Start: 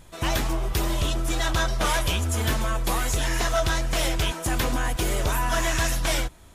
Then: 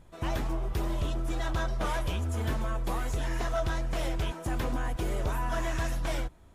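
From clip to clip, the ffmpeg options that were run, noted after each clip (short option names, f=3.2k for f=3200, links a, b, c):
-af "highshelf=f=2k:g=-11.5,volume=-5dB"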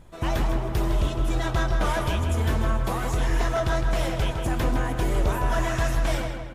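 -filter_complex "[0:a]asplit=2[a][b];[b]adelay=159,lowpass=f=3.6k:p=1,volume=-5.5dB,asplit=2[c][d];[d]adelay=159,lowpass=f=3.6k:p=1,volume=0.5,asplit=2[e][f];[f]adelay=159,lowpass=f=3.6k:p=1,volume=0.5,asplit=2[g][h];[h]adelay=159,lowpass=f=3.6k:p=1,volume=0.5,asplit=2[i][j];[j]adelay=159,lowpass=f=3.6k:p=1,volume=0.5,asplit=2[k][l];[l]adelay=159,lowpass=f=3.6k:p=1,volume=0.5[m];[a][c][e][g][i][k][m]amix=inputs=7:normalize=0,volume=5.5dB"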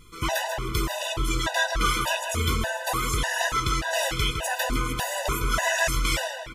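-af "tiltshelf=f=910:g=-7.5,afftfilt=real='re*gt(sin(2*PI*1.7*pts/sr)*(1-2*mod(floor(b*sr/1024/500),2)),0)':imag='im*gt(sin(2*PI*1.7*pts/sr)*(1-2*mod(floor(b*sr/1024/500),2)),0)':win_size=1024:overlap=0.75,volume=5dB"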